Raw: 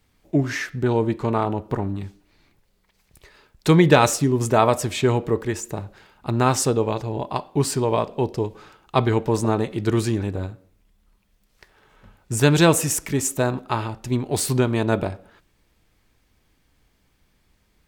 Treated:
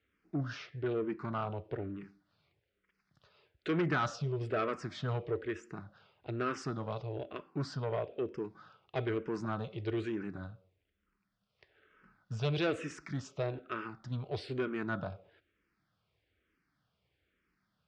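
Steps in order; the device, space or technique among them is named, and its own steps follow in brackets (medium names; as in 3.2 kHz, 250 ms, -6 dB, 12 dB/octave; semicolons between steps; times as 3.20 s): barber-pole phaser into a guitar amplifier (barber-pole phaser -1.1 Hz; saturation -17 dBFS, distortion -12 dB; cabinet simulation 94–4300 Hz, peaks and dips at 240 Hz -5 dB, 890 Hz -8 dB, 1.4 kHz +6 dB, 4.1 kHz -4 dB); 7.68–8.26 s: low-pass that closes with the level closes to 2.3 kHz, closed at -21.5 dBFS; peaking EQ 5.1 kHz +3 dB 0.33 oct; trim -8.5 dB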